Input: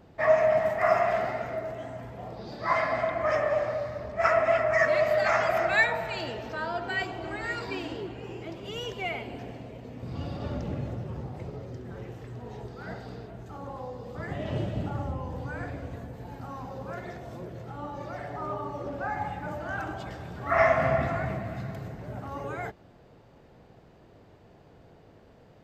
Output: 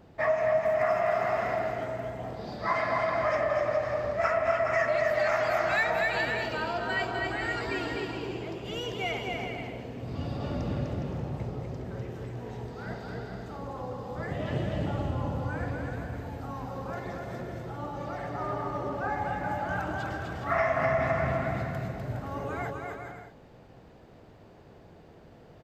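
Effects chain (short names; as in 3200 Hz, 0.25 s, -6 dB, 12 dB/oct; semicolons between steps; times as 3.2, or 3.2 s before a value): bouncing-ball echo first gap 0.25 s, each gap 0.65×, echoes 5; compressor 3:1, threshold -24 dBFS, peak gain reduction 7.5 dB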